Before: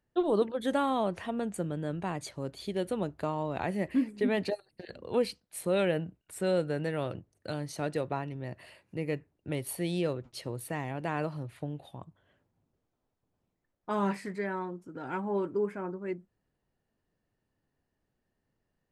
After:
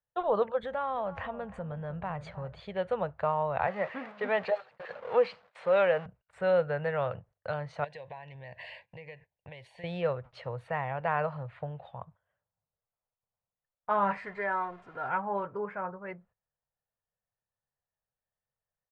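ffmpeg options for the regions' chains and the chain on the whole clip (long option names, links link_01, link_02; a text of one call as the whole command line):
ffmpeg -i in.wav -filter_complex "[0:a]asettb=1/sr,asplit=3[link_01][link_02][link_03];[link_01]atrim=end=0.634[link_04];[link_02]atrim=start=0.63:end=2.6,asetpts=PTS-STARTPTS,afade=type=in:duration=0.004:curve=qsin,afade=type=out:start_time=1.966:duration=0.004:curve=qsin,lowshelf=frequency=160:gain=12,acompressor=threshold=-34dB:ratio=3:attack=3.2:release=140:knee=1:detection=peak,asplit=2[link_05][link_06];[link_06]adelay=314,lowpass=frequency=1100:poles=1,volume=-13dB,asplit=2[link_07][link_08];[link_08]adelay=314,lowpass=frequency=1100:poles=1,volume=0.39,asplit=2[link_09][link_10];[link_10]adelay=314,lowpass=frequency=1100:poles=1,volume=0.39,asplit=2[link_11][link_12];[link_12]adelay=314,lowpass=frequency=1100:poles=1,volume=0.39[link_13];[link_05][link_07][link_09][link_11][link_13]amix=inputs=5:normalize=0,atrim=end_sample=86877[link_14];[link_03]atrim=start=2.596[link_15];[link_04][link_14]acrossfade=duration=0.004:curve1=hsin:curve2=qsin[link_16];[link_16][link_15]acrossfade=duration=0.004:curve1=qsin:curve2=hsin,asettb=1/sr,asplit=3[link_17][link_18][link_19];[link_17]atrim=end=3.674[link_20];[link_18]atrim=start=3.67:end=6.06,asetpts=PTS-STARTPTS,afade=type=in:duration=0.004:curve=qsin,afade=type=out:start_time=2.386:duration=0.004:curve=qsin,aeval=exprs='val(0)+0.5*0.0106*sgn(val(0))':channel_layout=same,agate=range=-33dB:threshold=-38dB:ratio=3:release=100:detection=peak,highpass=240,lowpass=6700[link_21];[link_19]atrim=start=6.056[link_22];[link_20][link_21]acrossfade=duration=0.004:curve1=hsin:curve2=qsin[link_23];[link_23][link_22]acrossfade=duration=0.004:curve1=qsin:curve2=hsin,asettb=1/sr,asplit=3[link_24][link_25][link_26];[link_24]atrim=end=7.844[link_27];[link_25]atrim=start=7.84:end=9.84,asetpts=PTS-STARTPTS,afade=type=in:duration=0.004:curve=qsin,afade=type=out:start_time=1.996:duration=0.004:curve=qsin,equalizer=frequency=5300:width=0.33:gain=14,acompressor=threshold=-40dB:ratio=16:attack=3.2:release=140:knee=1:detection=peak,asuperstop=centerf=1300:order=4:qfactor=2.1[link_28];[link_26]atrim=start=9.836[link_29];[link_27][link_28]acrossfade=duration=0.004:curve1=hsin:curve2=qsin[link_30];[link_30][link_29]acrossfade=duration=0.004:curve1=qsin:curve2=hsin,asettb=1/sr,asplit=3[link_31][link_32][link_33];[link_31]atrim=end=14.174[link_34];[link_32]atrim=start=14.17:end=15.09,asetpts=PTS-STARTPTS,afade=type=in:duration=0.004:curve=qsin,afade=type=out:start_time=0.916:duration=0.004:curve=qsin,aeval=exprs='val(0)+0.5*0.00299*sgn(val(0))':channel_layout=same,aecho=1:1:2.9:0.47,atrim=end_sample=40572[link_35];[link_33]atrim=start=15.086[link_36];[link_34][link_35]acrossfade=duration=0.004:curve1=hsin:curve2=qsin[link_37];[link_37][link_36]acrossfade=duration=0.004:curve1=qsin:curve2=hsin,lowpass=frequency=7300:width=0.5412,lowpass=frequency=7300:width=1.3066,agate=range=-16dB:threshold=-55dB:ratio=16:detection=peak,firequalizer=gain_entry='entry(140,0);entry(310,-19);entry(490,4);entry(810,6);entry(1300,7);entry(5600,-18)':delay=0.05:min_phase=1" out.wav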